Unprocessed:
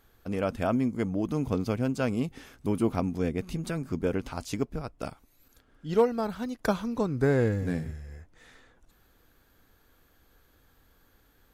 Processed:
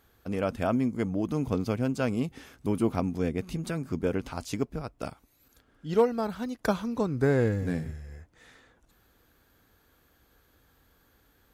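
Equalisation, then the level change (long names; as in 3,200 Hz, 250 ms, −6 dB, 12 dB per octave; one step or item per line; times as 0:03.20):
high-pass filter 40 Hz
0.0 dB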